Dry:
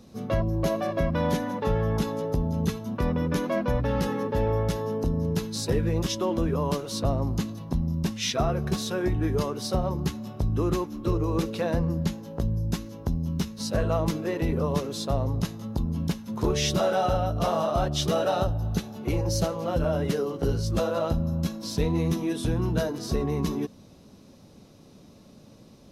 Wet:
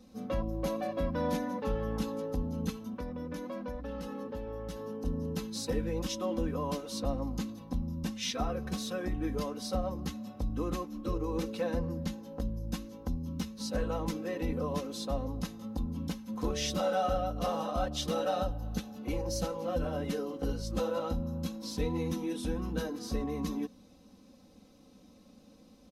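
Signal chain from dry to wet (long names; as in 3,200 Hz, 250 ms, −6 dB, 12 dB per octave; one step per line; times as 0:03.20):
comb filter 3.9 ms, depth 88%
0:02.69–0:05.05: downward compressor, threshold −27 dBFS, peak gain reduction 9.5 dB
level −9 dB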